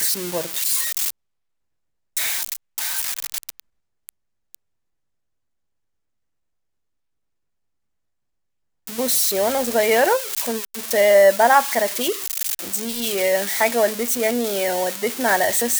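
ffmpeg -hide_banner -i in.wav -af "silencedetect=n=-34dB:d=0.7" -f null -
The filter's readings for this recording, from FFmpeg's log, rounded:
silence_start: 1.10
silence_end: 2.17 | silence_duration: 1.06
silence_start: 4.55
silence_end: 8.87 | silence_duration: 4.33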